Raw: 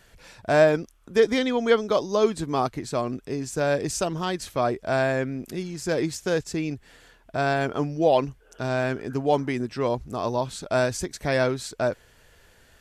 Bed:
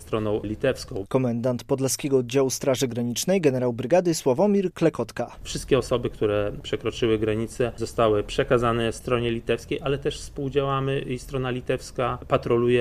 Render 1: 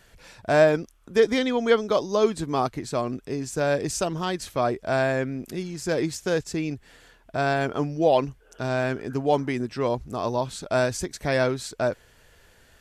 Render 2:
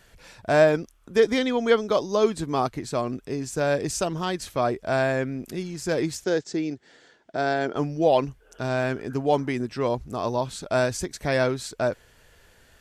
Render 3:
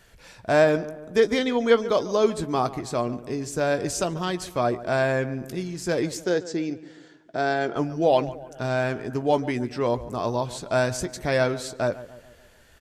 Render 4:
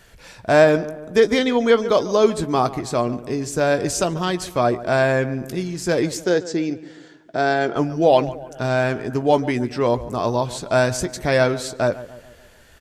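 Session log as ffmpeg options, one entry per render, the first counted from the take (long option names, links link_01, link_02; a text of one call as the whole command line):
ffmpeg -i in.wav -af anull out.wav
ffmpeg -i in.wav -filter_complex "[0:a]asettb=1/sr,asplit=3[link_01][link_02][link_03];[link_01]atrim=end=6.244[link_04];[link_02]atrim=start=6.24:end=7.76,asetpts=PTS-STARTPTS,afade=type=in:duration=0.004:curve=qsin,afade=type=out:start_time=1.516:duration=0.004:curve=qsin,highpass=200,equalizer=frequency=350:width_type=q:width=4:gain=4,equalizer=frequency=1100:width_type=q:width=4:gain=-7,equalizer=frequency=2600:width_type=q:width=4:gain=-7,lowpass=frequency=7000:width=0.5412,lowpass=frequency=7000:width=1.3066[link_05];[link_03]atrim=start=7.756[link_06];[link_04][link_05]acrossfade=duration=0.004:curve1=hsin:curve2=qsin[link_07];[link_07][link_06]acrossfade=duration=0.004:curve1=qsin:curve2=hsin" out.wav
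ffmpeg -i in.wav -filter_complex "[0:a]asplit=2[link_01][link_02];[link_02]adelay=17,volume=-13dB[link_03];[link_01][link_03]amix=inputs=2:normalize=0,asplit=2[link_04][link_05];[link_05]adelay=143,lowpass=frequency=2000:poles=1,volume=-15.5dB,asplit=2[link_06][link_07];[link_07]adelay=143,lowpass=frequency=2000:poles=1,volume=0.52,asplit=2[link_08][link_09];[link_09]adelay=143,lowpass=frequency=2000:poles=1,volume=0.52,asplit=2[link_10][link_11];[link_11]adelay=143,lowpass=frequency=2000:poles=1,volume=0.52,asplit=2[link_12][link_13];[link_13]adelay=143,lowpass=frequency=2000:poles=1,volume=0.52[link_14];[link_04][link_06][link_08][link_10][link_12][link_14]amix=inputs=6:normalize=0" out.wav
ffmpeg -i in.wav -af "volume=5dB,alimiter=limit=-3dB:level=0:latency=1" out.wav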